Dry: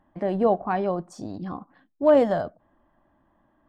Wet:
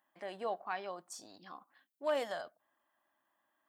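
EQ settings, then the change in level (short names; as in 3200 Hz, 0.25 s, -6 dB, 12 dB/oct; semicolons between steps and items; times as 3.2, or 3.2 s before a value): tone controls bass -3 dB, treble -12 dB; differentiator; high shelf 4500 Hz +10.5 dB; +5.0 dB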